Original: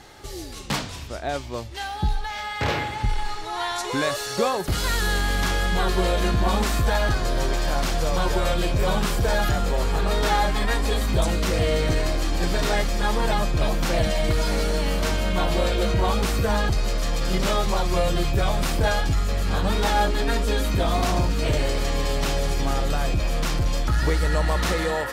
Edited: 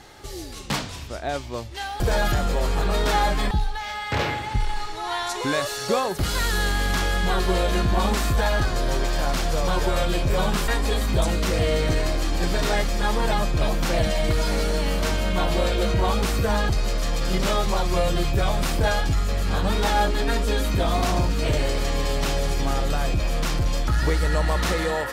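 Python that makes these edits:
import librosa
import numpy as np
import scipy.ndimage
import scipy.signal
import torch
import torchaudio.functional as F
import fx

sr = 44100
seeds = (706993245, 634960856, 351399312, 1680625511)

y = fx.edit(x, sr, fx.move(start_s=9.17, length_s=1.51, to_s=2.0), tone=tone)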